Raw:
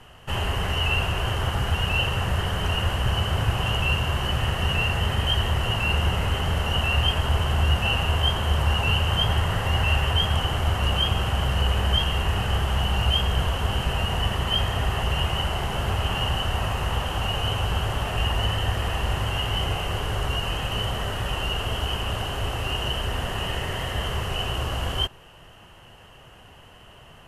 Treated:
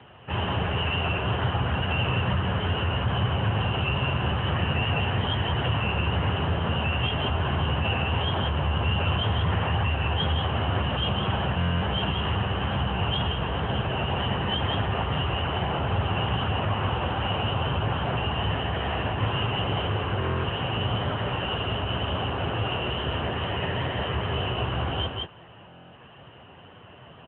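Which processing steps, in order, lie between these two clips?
distance through air 220 m; delay 178 ms -4.5 dB; wow and flutter 22 cents; peak limiter -16 dBFS, peak gain reduction 6.5 dB; buffer glitch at 11.56/20.18/25.67 s, samples 1024, times 10; trim +3 dB; AMR-NB 10.2 kbps 8 kHz

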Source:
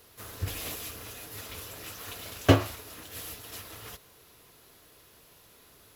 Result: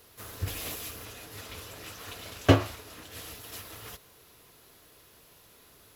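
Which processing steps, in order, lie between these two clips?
1.05–3.35 s: treble shelf 11 kHz -9 dB

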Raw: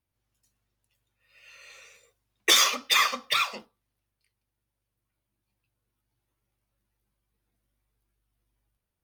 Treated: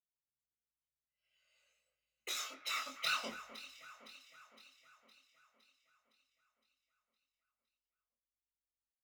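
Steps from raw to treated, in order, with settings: Doppler pass-by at 3.38 s, 29 m/s, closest 2.1 m; doubling 23 ms -3.5 dB; on a send: echo whose repeats swap between lows and highs 256 ms, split 2.2 kHz, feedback 74%, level -12 dB; on the sum: trim +1 dB

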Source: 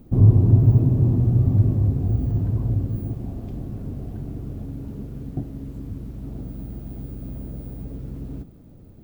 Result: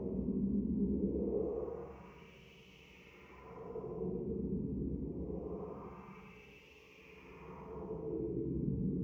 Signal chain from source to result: rippled EQ curve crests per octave 0.78, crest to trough 14 dB; wah-wah 3.2 Hz 230–3100 Hz, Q 5.5; Paulstretch 13×, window 0.10 s, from 7.37 s; trim +10 dB

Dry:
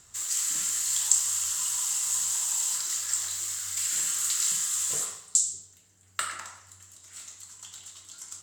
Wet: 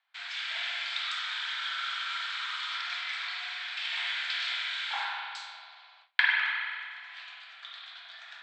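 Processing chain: spring tank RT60 2 s, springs 46 ms, chirp 45 ms, DRR -0.5 dB; mistuned SSB +360 Hz 380–3400 Hz; gate with hold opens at -54 dBFS; trim +8 dB

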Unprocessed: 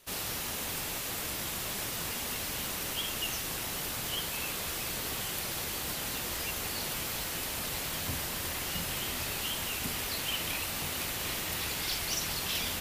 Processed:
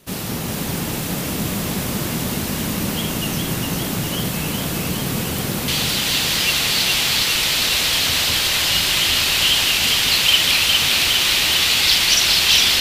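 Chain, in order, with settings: peaking EQ 180 Hz +14.5 dB 2.1 oct, from 5.68 s 3.6 kHz; echo whose repeats swap between lows and highs 204 ms, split 1.2 kHz, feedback 83%, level -2 dB; trim +6 dB

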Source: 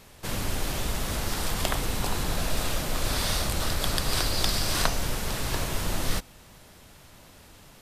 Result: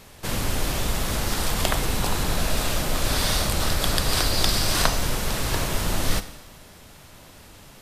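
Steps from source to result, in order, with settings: Schroeder reverb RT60 1.1 s, combs from 30 ms, DRR 12 dB; trim +4 dB

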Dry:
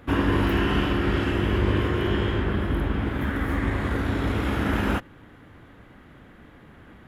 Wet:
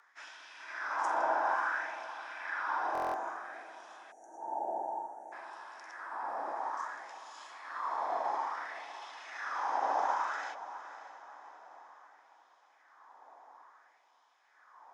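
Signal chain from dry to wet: bass shelf 96 Hz +11 dB; wide varispeed 0.474×; LFO high-pass sine 0.58 Hz 550–2900 Hz; echo that smears into a reverb 578 ms, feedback 45%, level -13 dB; time-frequency box 3.09–4.41 s, 650–5400 Hz -6 dB; band-stop 2.6 kHz, Q 14; time-frequency box 4.11–5.32 s, 790–5500 Hz -29 dB; frequency shift +160 Hz; buffer glitch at 2.93 s, samples 1024, times 8; trim -5 dB

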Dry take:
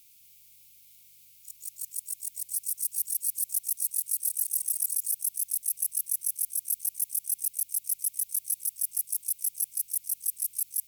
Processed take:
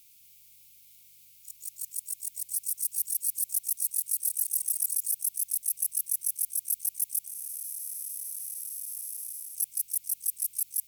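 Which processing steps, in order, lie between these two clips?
7.27–9.55 s: spectral blur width 495 ms

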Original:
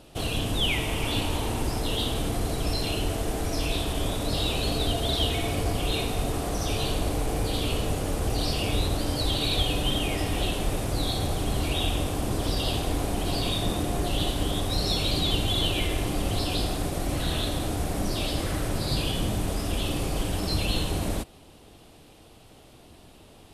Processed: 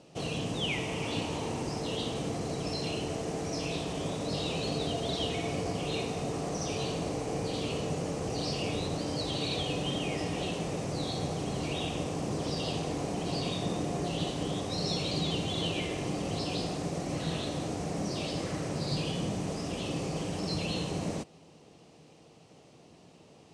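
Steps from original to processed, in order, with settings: cabinet simulation 130–7900 Hz, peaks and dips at 160 Hz +9 dB, 480 Hz +4 dB, 1.5 kHz -5 dB, 3.5 kHz -6 dB, 6 kHz +4 dB; trim -4.5 dB

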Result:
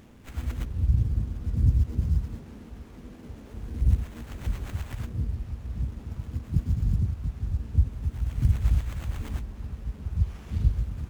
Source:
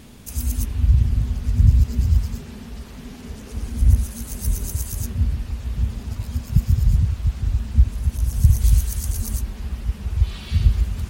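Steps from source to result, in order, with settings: dynamic bell 2.7 kHz, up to -5 dB, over -50 dBFS, Q 0.78; harmony voices +5 st -7 dB, +12 st -13 dB; sliding maximum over 9 samples; trim -8.5 dB

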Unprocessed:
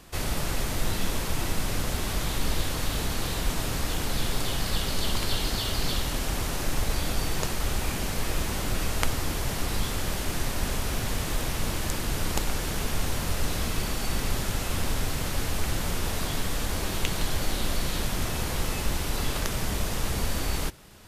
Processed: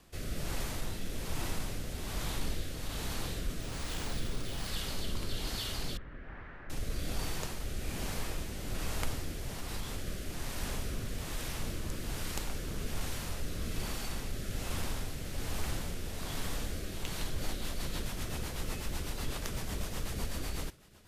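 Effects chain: 5.97–6.70 s: four-pole ladder low-pass 2 kHz, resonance 55%; 9.50–10.07 s: compression, threshold -25 dBFS, peak gain reduction 5.5 dB; saturation -12.5 dBFS, distortion -28 dB; rotary cabinet horn 1.2 Hz, later 8 Hz, at 17.00 s; 3.61–4.67 s: careless resampling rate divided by 3×, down none, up hold; trim -6.5 dB

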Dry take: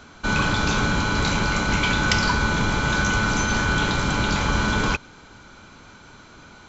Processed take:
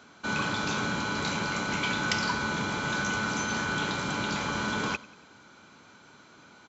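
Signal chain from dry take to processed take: high-pass 150 Hz 12 dB/octave; on a send: feedback delay 93 ms, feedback 51%, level -21 dB; on the sum: trim -7 dB

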